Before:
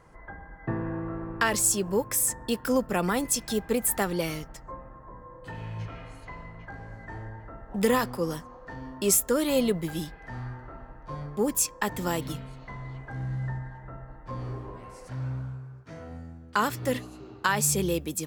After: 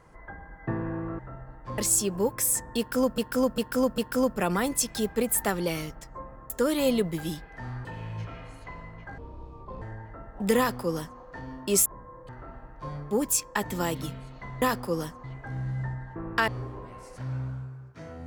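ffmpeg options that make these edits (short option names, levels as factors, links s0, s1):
-filter_complex "[0:a]asplit=16[s0][s1][s2][s3][s4][s5][s6][s7][s8][s9][s10][s11][s12][s13][s14][s15];[s0]atrim=end=1.192[s16];[s1]atrim=start=13.798:end=14.392[s17];[s2]atrim=start=1.508:end=2.912[s18];[s3]atrim=start=2.508:end=2.912[s19];[s4]atrim=start=2.508:end=2.912[s20];[s5]atrim=start=2.508:end=5.032[s21];[s6]atrim=start=9.198:end=10.552[s22];[s7]atrim=start=5.458:end=6.794[s23];[s8]atrim=start=6.79:end=7.16,asetpts=PTS-STARTPTS,asetrate=25578,aresample=44100[s24];[s9]atrim=start=7.156:end=9.202[s25];[s10]atrim=start=5.028:end=5.462[s26];[s11]atrim=start=10.548:end=12.882[s27];[s12]atrim=start=7.918:end=8.542[s28];[s13]atrim=start=12.878:end=13.802[s29];[s14]atrim=start=1.188:end=1.512[s30];[s15]atrim=start=14.388[s31];[s16][s17]acrossfade=d=0.004:c1=hsin:c2=hsin[s32];[s32][s18]acrossfade=d=0.004:c1=hsin:c2=hsin[s33];[s33][s19]acrossfade=d=0.004:c1=hsin:c2=hsin[s34];[s34][s20]acrossfade=d=0.004:c1=hsin:c2=hsin[s35];[s35][s21]acrossfade=d=0.004:c1=hsin:c2=hsin[s36];[s36][s22]acrossfade=d=0.004:c1=hsin:c2=hsin[s37];[s37][s23]acrossfade=d=0.004:c1=hsin:c2=hsin[s38];[s38][s24]acrossfade=d=0.004:c1=hsin:c2=hsin[s39];[s39][s25]acrossfade=d=0.004:c1=hsin:c2=hsin[s40];[s40][s26]acrossfade=d=0.004:c1=hsin:c2=hsin[s41];[s41][s27]acrossfade=d=0.004:c1=hsin:c2=hsin[s42];[s42][s28]acrossfade=d=0.004:c1=hsin:c2=hsin[s43];[s43][s29]acrossfade=d=0.004:c1=hsin:c2=hsin[s44];[s44][s30]acrossfade=d=0.004:c1=hsin:c2=hsin[s45];[s45][s31]acrossfade=d=0.004:c1=hsin:c2=hsin"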